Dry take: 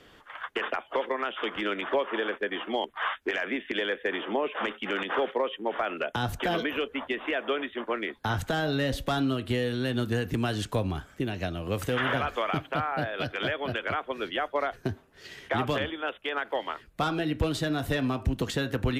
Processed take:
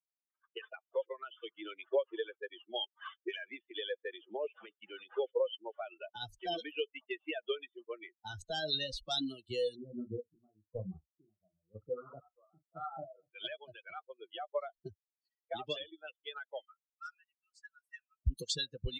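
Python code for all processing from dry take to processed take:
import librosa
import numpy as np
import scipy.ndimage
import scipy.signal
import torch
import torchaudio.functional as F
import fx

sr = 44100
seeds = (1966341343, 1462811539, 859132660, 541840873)

y = fx.chain(x, sr, fx.cheby1_lowpass(hz=1400.0, order=8),
    fx.doubler(ms=37.0, db=-5.0),
    fx.chopper(hz=1.0, depth_pct=60, duty_pct=45), at=(9.75, 13.31))
y = fx.chain(y, sr, fx.brickwall_highpass(low_hz=1200.0),
    fx.peak_eq(hz=3600.0, db=-14.0, octaves=0.56), at=(16.65, 18.23))
y = fx.bin_expand(y, sr, power=3.0)
y = fx.env_lowpass(y, sr, base_hz=730.0, full_db=-30.5)
y = fx.graphic_eq_10(y, sr, hz=(125, 250, 500, 1000, 2000, 4000, 8000), db=(-8, -10, 5, -12, -8, 9, 11))
y = y * 10.0 ** (2.0 / 20.0)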